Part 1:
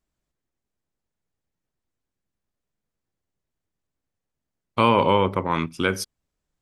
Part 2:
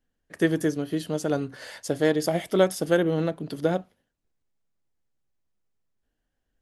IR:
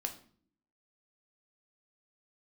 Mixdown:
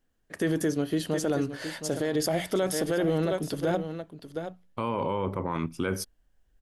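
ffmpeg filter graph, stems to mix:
-filter_complex "[0:a]equalizer=f=3.5k:t=o:w=2.5:g=-8,volume=0dB[a];[1:a]asubboost=boost=3.5:cutoff=90,bandreject=f=60:t=h:w=6,bandreject=f=120:t=h:w=6,bandreject=f=180:t=h:w=6,volume=2.5dB,asplit=3[b][c][d];[c]volume=-12dB[e];[d]apad=whole_len=291775[f];[a][f]sidechaincompress=threshold=-36dB:ratio=8:attack=9.4:release=1260[g];[e]aecho=0:1:717:1[h];[g][b][h]amix=inputs=3:normalize=0,alimiter=limit=-18dB:level=0:latency=1:release=27"

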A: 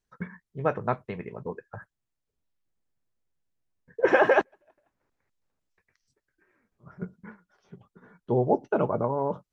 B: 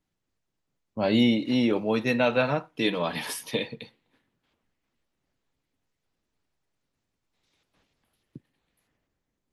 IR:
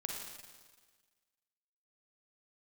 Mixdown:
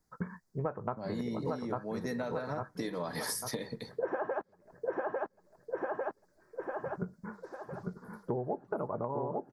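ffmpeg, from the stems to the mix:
-filter_complex "[0:a]highshelf=f=1.8k:t=q:w=1.5:g=-13.5,volume=1.5dB,asplit=2[a][b];[b]volume=-4.5dB[c];[1:a]firequalizer=gain_entry='entry(1900,0);entry(2700,-19);entry(4700,6)':delay=0.05:min_phase=1,acompressor=threshold=-35dB:ratio=3,volume=1.5dB[d];[c]aecho=0:1:849|1698|2547|3396|4245|5094:1|0.41|0.168|0.0689|0.0283|0.0116[e];[a][d][e]amix=inputs=3:normalize=0,acompressor=threshold=-31dB:ratio=12"

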